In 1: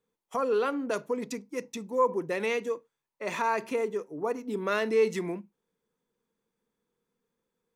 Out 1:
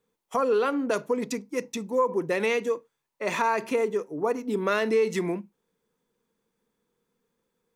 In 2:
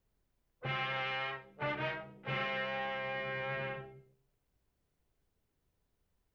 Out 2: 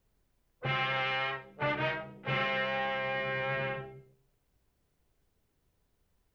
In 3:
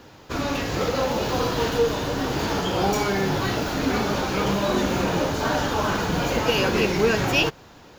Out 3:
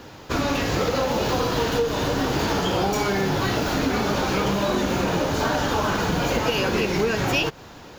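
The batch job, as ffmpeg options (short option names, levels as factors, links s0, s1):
-af "acompressor=threshold=0.0631:ratio=6,volume=1.78"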